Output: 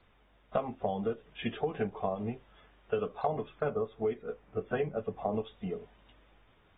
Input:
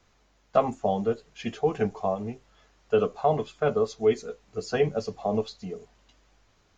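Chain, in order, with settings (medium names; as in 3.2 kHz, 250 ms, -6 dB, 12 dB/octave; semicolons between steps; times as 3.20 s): compression 5:1, threshold -29 dBFS, peak gain reduction 12.5 dB; 3.27–5.33 s: low-pass 2.3 kHz 12 dB/octave; AAC 16 kbps 32 kHz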